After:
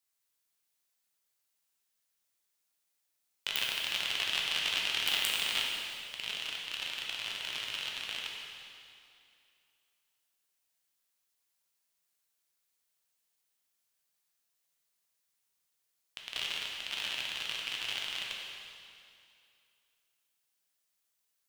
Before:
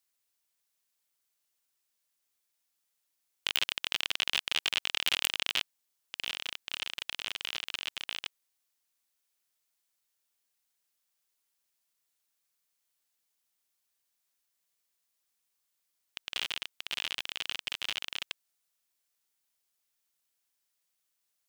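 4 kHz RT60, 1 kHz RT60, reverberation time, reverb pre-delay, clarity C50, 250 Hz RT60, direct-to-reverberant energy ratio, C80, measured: 2.3 s, 2.5 s, 2.5 s, 5 ms, 0.0 dB, 2.5 s, -2.0 dB, 1.5 dB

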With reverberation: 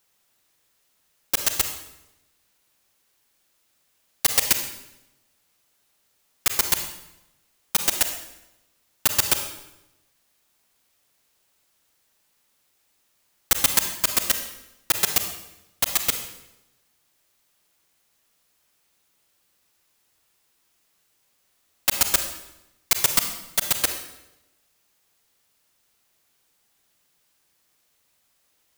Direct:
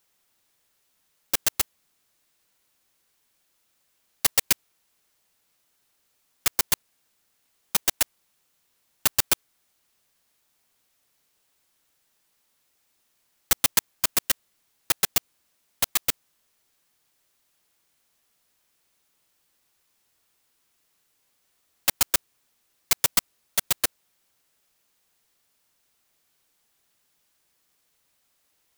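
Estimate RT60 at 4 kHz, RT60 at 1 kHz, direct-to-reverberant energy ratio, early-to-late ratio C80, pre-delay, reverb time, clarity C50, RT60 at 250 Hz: 0.80 s, 0.85 s, 6.0 dB, 9.5 dB, 34 ms, 0.90 s, 7.5 dB, 1.0 s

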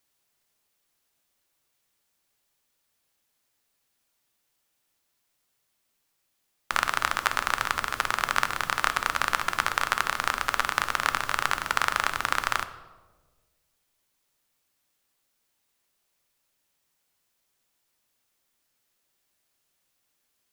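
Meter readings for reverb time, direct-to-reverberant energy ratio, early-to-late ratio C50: 1.4 s, 10.0 dB, 13.0 dB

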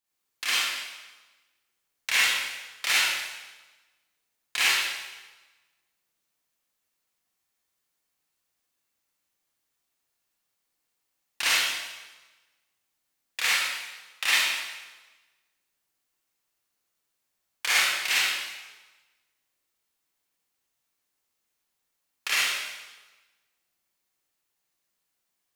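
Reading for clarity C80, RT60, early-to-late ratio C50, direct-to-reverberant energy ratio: 0.0 dB, 1.2 s, -4.5 dB, -9.0 dB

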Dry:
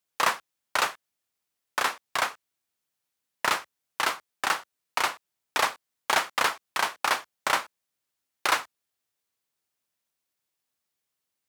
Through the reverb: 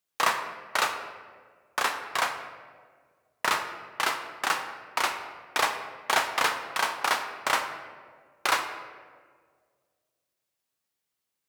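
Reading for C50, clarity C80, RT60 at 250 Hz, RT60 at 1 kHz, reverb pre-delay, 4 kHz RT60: 8.0 dB, 9.5 dB, 2.1 s, 1.5 s, 3 ms, 0.95 s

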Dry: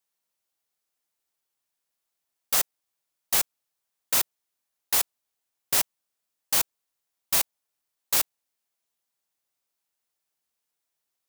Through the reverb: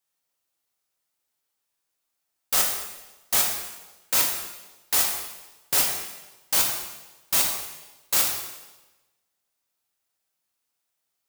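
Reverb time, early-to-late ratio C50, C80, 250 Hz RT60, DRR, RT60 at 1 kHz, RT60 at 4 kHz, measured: 1.1 s, 3.5 dB, 5.5 dB, 1.1 s, 0.0 dB, 1.1 s, 1.0 s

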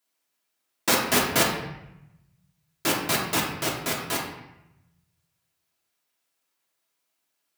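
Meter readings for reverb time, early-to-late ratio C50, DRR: 0.85 s, 4.0 dB, -2.5 dB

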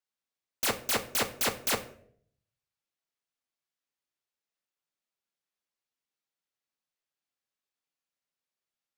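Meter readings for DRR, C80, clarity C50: 6.0 dB, 17.0 dB, 13.5 dB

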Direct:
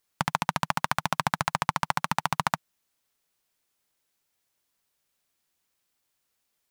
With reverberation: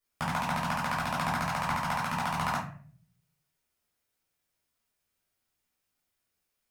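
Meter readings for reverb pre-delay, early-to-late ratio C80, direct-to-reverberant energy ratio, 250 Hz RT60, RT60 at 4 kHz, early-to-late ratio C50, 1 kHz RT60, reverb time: 5 ms, 10.5 dB, -6.5 dB, 0.65 s, 0.30 s, 5.0 dB, 0.40 s, 0.50 s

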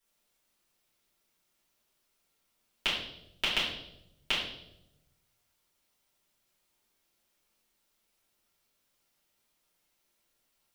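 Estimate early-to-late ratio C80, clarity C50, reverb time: 6.5 dB, 3.5 dB, 0.85 s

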